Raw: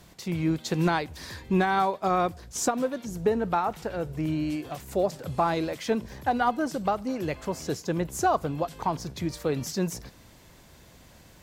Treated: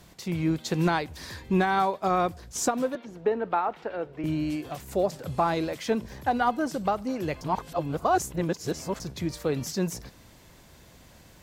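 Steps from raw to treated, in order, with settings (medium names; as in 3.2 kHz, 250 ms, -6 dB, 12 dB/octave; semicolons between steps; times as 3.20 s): 2.95–4.24 s: three-band isolator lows -17 dB, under 250 Hz, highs -22 dB, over 3.7 kHz; 7.41–9.00 s: reverse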